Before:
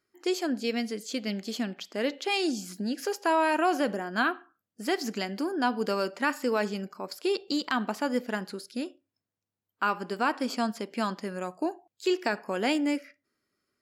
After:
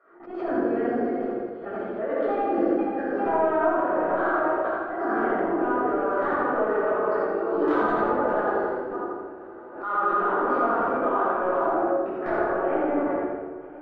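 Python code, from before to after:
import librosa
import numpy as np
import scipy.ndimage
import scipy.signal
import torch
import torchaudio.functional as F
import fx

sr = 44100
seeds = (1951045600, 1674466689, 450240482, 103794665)

y = fx.reverse_delay_fb(x, sr, ms=232, feedback_pct=71, wet_db=-12.5)
y = scipy.signal.sosfilt(scipy.signal.ellip(3, 1.0, 80, [350.0, 1400.0], 'bandpass', fs=sr, output='sos'), y)
y = fx.transient(y, sr, attack_db=-11, sustain_db=12)
y = fx.level_steps(y, sr, step_db=19)
y = fx.echo_feedback(y, sr, ms=84, feedback_pct=41, wet_db=-3.5)
y = fx.room_shoebox(y, sr, seeds[0], volume_m3=660.0, walls='mixed', distance_m=6.3)
y = fx.pre_swell(y, sr, db_per_s=89.0)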